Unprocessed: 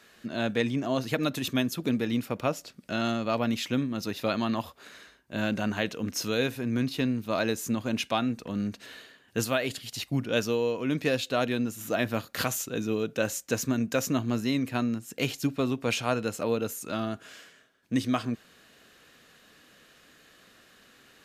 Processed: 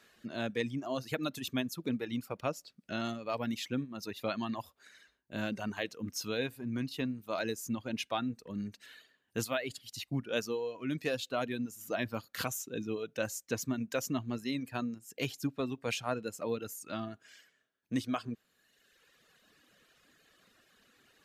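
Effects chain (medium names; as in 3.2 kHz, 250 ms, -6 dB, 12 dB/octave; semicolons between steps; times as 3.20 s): reverb removal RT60 1.4 s; trim -6 dB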